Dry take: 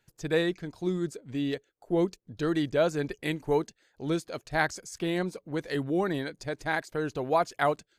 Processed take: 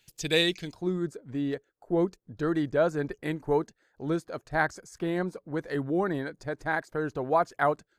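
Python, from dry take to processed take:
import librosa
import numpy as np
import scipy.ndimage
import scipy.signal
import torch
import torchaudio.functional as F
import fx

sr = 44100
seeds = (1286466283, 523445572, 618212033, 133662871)

y = fx.high_shelf_res(x, sr, hz=2000.0, db=fx.steps((0.0, 9.5), (0.73, -6.5)), q=1.5)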